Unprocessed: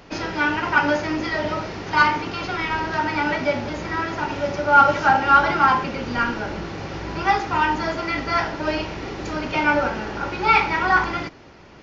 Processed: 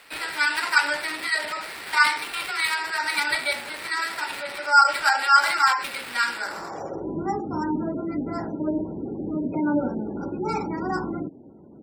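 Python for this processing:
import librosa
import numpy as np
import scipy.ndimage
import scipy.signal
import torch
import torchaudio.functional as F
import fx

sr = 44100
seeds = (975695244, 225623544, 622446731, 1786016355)

y = fx.filter_sweep_bandpass(x, sr, from_hz=2200.0, to_hz=250.0, start_s=6.34, end_s=7.2, q=1.7)
y = fx.sample_hold(y, sr, seeds[0], rate_hz=6400.0, jitter_pct=20)
y = fx.spec_gate(y, sr, threshold_db=-25, keep='strong')
y = F.gain(torch.from_numpy(y), 5.0).numpy()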